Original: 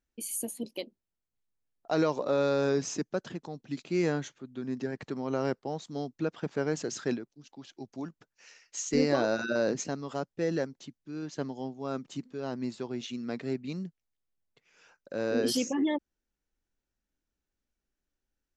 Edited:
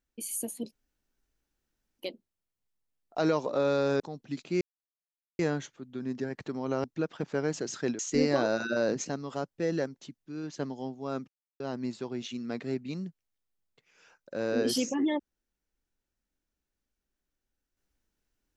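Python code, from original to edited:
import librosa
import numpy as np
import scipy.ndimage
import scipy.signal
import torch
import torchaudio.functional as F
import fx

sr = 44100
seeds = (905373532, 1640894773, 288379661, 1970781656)

y = fx.edit(x, sr, fx.insert_room_tone(at_s=0.72, length_s=1.27),
    fx.cut(start_s=2.73, length_s=0.67),
    fx.insert_silence(at_s=4.01, length_s=0.78),
    fx.cut(start_s=5.46, length_s=0.61),
    fx.cut(start_s=7.22, length_s=1.56),
    fx.silence(start_s=12.07, length_s=0.32), tone=tone)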